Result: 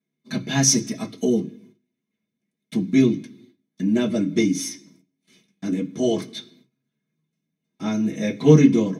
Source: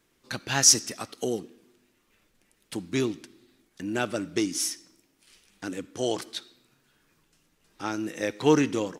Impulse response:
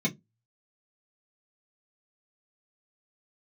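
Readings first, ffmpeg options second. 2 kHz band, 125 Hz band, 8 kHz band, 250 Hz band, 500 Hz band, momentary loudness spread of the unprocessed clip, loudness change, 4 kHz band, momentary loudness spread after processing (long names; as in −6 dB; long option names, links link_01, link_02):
+0.5 dB, +13.5 dB, 0.0 dB, +10.5 dB, +5.5 dB, 20 LU, +5.0 dB, −2.0 dB, 16 LU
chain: -filter_complex "[0:a]agate=range=-20dB:threshold=-59dB:ratio=16:detection=peak[link_01];[1:a]atrim=start_sample=2205,asetrate=42777,aresample=44100[link_02];[link_01][link_02]afir=irnorm=-1:irlink=0,volume=-5.5dB"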